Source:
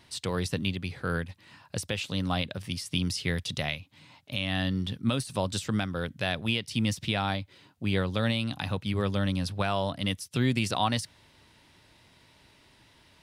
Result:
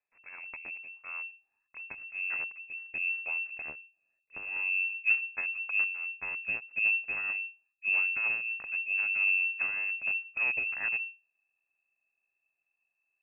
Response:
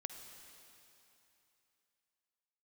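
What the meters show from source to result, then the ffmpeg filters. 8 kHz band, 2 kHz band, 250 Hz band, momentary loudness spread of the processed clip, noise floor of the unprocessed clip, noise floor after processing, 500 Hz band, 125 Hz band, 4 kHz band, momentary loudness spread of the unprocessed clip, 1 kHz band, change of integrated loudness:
below −40 dB, +7.5 dB, below −30 dB, 15 LU, −60 dBFS, −84 dBFS, −22.0 dB, below −35 dB, below −30 dB, 6 LU, −15.5 dB, +0.5 dB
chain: -af "aeval=exprs='0.211*(cos(1*acos(clip(val(0)/0.211,-1,1)))-cos(1*PI/2))+0.0668*(cos(3*acos(clip(val(0)/0.211,-1,1)))-cos(3*PI/2))+0.00944*(cos(4*acos(clip(val(0)/0.211,-1,1)))-cos(4*PI/2))+0.00376*(cos(8*acos(clip(val(0)/0.211,-1,1)))-cos(8*PI/2))':channel_layout=same,asubboost=boost=12:cutoff=110,lowpass=frequency=2300:width_type=q:width=0.5098,lowpass=frequency=2300:width_type=q:width=0.6013,lowpass=frequency=2300:width_type=q:width=0.9,lowpass=frequency=2300:width_type=q:width=2.563,afreqshift=-2700,volume=-6.5dB"

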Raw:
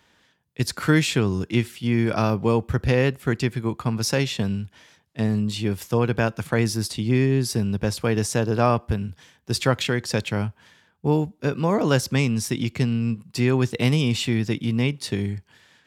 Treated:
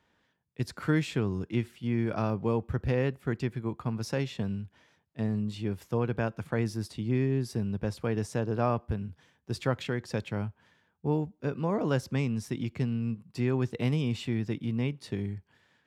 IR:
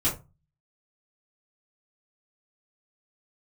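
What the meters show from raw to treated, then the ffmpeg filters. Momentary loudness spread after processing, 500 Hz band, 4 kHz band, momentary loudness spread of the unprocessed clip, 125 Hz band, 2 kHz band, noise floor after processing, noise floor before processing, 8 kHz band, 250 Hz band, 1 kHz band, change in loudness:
7 LU, −8.0 dB, −14.5 dB, 8 LU, −7.5 dB, −11.0 dB, −73 dBFS, −62 dBFS, −16.5 dB, −7.5 dB, −9.0 dB, −8.0 dB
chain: -af "highshelf=frequency=2700:gain=-10.5,volume=-7.5dB"

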